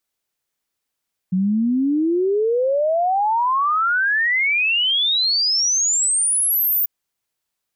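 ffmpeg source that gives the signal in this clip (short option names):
-f lavfi -i "aevalsrc='0.168*clip(min(t,5.54-t)/0.01,0,1)*sin(2*PI*180*5.54/log(15000/180)*(exp(log(15000/180)*t/5.54)-1))':d=5.54:s=44100"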